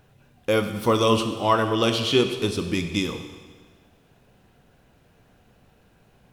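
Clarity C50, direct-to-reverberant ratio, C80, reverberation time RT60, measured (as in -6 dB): 8.5 dB, 7.0 dB, 10.0 dB, 1.5 s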